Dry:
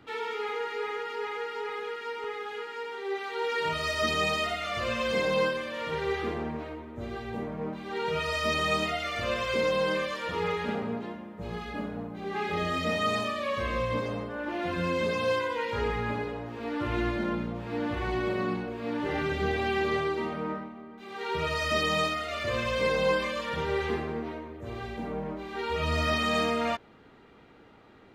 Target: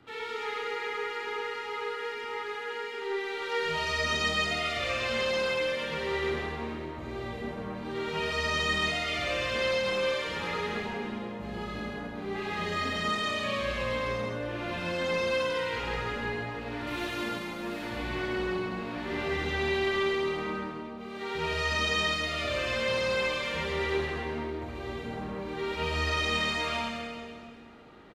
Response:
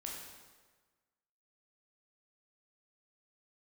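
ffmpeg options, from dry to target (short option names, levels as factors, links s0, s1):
-filter_complex "[0:a]acrossover=split=7400[s0][s1];[s1]acompressor=threshold=0.00112:ratio=4:attack=1:release=60[s2];[s0][s2]amix=inputs=2:normalize=0,asettb=1/sr,asplit=3[s3][s4][s5];[s3]atrim=end=16.874[s6];[s4]atrim=start=16.87:end=17.85,asetpts=PTS-STARTPTS,afade=t=in:d=0.004:c=qsin,afade=t=out:st=0.976:d=0.004:c=qsin,aemphasis=mode=production:type=bsi[s7];[s5]atrim=start=17.846[s8];[s6][s7]acrossfade=d=0.004:c1=hsin:c2=qsin[s9];[s9][s8]acrossfade=d=0.004:c1=qsin:c2=hsin,acrossover=split=700|1300[s10][s11][s12];[s10]asoftclip=type=tanh:threshold=0.0211[s13];[s11]acompressor=threshold=0.00355:ratio=6[s14];[s12]aecho=1:1:133:0.531[s15];[s13][s14][s15]amix=inputs=3:normalize=0[s16];[1:a]atrim=start_sample=2205,asetrate=26901,aresample=44100[s17];[s16][s17]afir=irnorm=-1:irlink=0"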